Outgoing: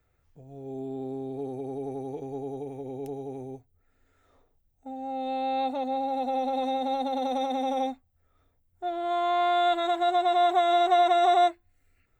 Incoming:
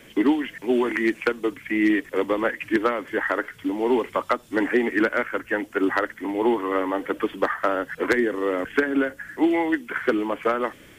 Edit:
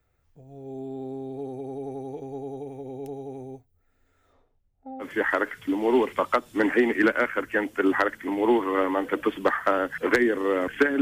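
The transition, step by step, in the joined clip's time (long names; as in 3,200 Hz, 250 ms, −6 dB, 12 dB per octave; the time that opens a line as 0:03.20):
outgoing
0:04.32–0:05.05: low-pass filter 6,400 Hz → 1,000 Hz
0:05.02: continue with incoming from 0:02.99, crossfade 0.06 s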